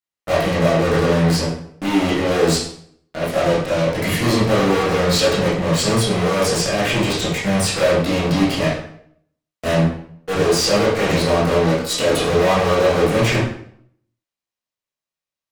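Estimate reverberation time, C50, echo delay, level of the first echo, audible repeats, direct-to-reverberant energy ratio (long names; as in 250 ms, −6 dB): 0.60 s, 2.5 dB, no echo audible, no echo audible, no echo audible, −9.0 dB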